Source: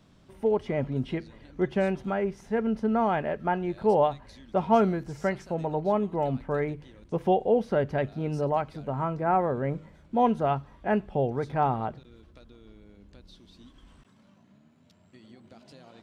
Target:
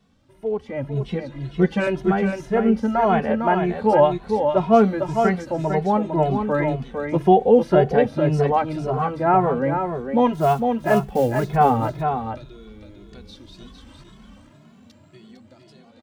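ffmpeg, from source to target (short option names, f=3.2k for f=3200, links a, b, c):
-filter_complex "[0:a]asettb=1/sr,asplit=3[a][b][c];[a]atrim=end=0.934[d];[b]atrim=start=0.93:end=1.87,asetpts=PTS-STARTPTS,afade=t=in:d=0.004:c=qsin,afade=t=out:st=0.936:d=0.004:c=qsin,aecho=1:1:6:0.85,atrim=end_sample=41454[e];[c]atrim=start=1.866[f];[d][e]acrossfade=d=0.004:c1=hsin:c2=qsin[g];[g][f]acrossfade=d=0.004:c1=qsin:c2=hsin,dynaudnorm=f=180:g=13:m=13dB,asplit=3[h][i][j];[h]afade=t=out:st=10.33:d=0.02[k];[i]acrusher=bits=6:mode=log:mix=0:aa=0.000001,afade=t=in:st=10.33:d=0.02,afade=t=out:st=11.55:d=0.02[l];[j]afade=t=in:st=11.55:d=0.02[m];[k][l][m]amix=inputs=3:normalize=0,aecho=1:1:454:0.501,asplit=2[n][o];[o]adelay=2.3,afreqshift=1.9[p];[n][p]amix=inputs=2:normalize=1"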